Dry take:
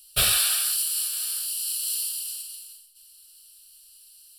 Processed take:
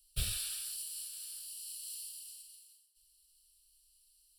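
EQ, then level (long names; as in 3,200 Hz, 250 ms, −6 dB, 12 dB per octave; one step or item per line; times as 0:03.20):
guitar amp tone stack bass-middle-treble 10-0-1
parametric band 13,000 Hz −6 dB 0.31 octaves
+5.5 dB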